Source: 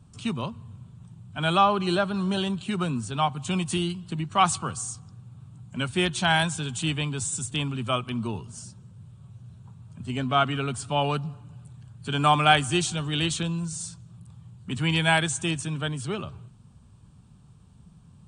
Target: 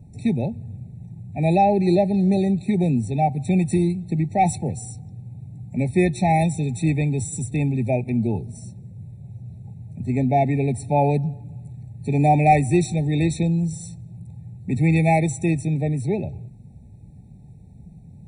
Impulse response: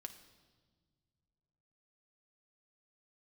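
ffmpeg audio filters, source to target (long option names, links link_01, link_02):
-af "acontrast=65,equalizer=frequency=4600:width_type=o:width=2.4:gain=-13,afftfilt=real='re*eq(mod(floor(b*sr/1024/890),2),0)':imag='im*eq(mod(floor(b*sr/1024/890),2),0)':win_size=1024:overlap=0.75,volume=2dB"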